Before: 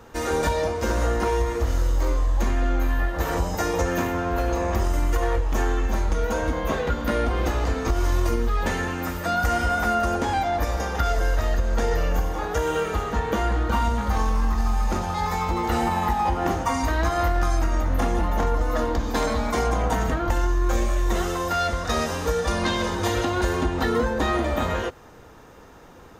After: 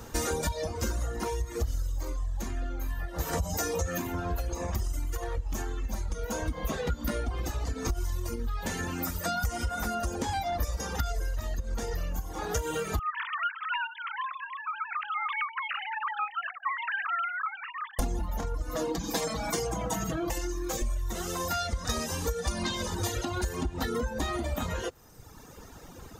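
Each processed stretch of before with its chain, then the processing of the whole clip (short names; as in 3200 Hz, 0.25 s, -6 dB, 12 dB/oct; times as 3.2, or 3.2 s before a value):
3.33–3.98 doubler 13 ms -5 dB + fast leveller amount 50%
12.99–17.99 sine-wave speech + elliptic high-pass 1200 Hz, stop band 80 dB + Doppler distortion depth 0.1 ms
18.75–20.82 HPF 82 Hz + comb 6.1 ms, depth 78%
whole clip: tone controls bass +6 dB, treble +11 dB; compressor 5:1, threshold -26 dBFS; reverb removal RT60 1.5 s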